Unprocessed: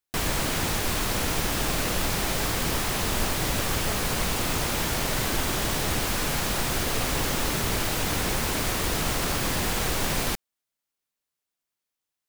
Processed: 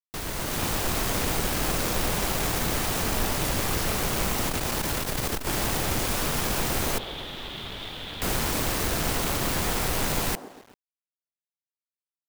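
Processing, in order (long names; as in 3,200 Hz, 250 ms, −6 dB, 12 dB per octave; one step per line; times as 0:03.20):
phase distortion by the signal itself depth 0.5 ms
in parallel at −1.5 dB: brickwall limiter −24 dBFS, peak gain reduction 10.5 dB
0:06.98–0:08.22: on the sum: transistor ladder low-pass 3,700 Hz, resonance 75%
on a send: delay with a band-pass on its return 131 ms, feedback 54%, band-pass 520 Hz, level −8.5 dB
on the sum: dead-zone distortion −55.5 dBFS
automatic gain control gain up to 7 dB
bit reduction 7 bits
0:04.49–0:05.47: saturating transformer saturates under 110 Hz
level −8.5 dB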